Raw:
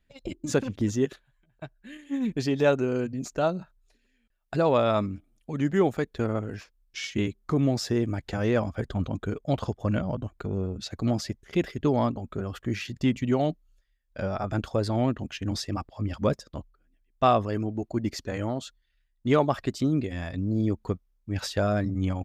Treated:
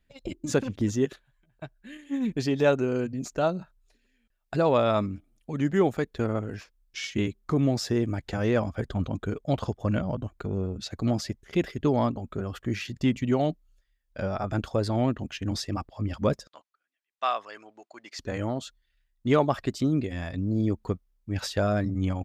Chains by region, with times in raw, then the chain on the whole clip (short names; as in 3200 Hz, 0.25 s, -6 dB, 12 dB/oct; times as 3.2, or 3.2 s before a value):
16.47–18.19 HPF 1100 Hz + air absorption 54 m
whole clip: dry